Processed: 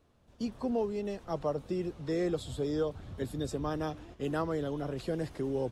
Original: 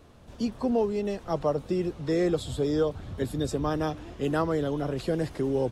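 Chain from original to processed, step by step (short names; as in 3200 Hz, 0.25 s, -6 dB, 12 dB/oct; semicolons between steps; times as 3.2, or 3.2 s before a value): gate -41 dBFS, range -8 dB; gain -6 dB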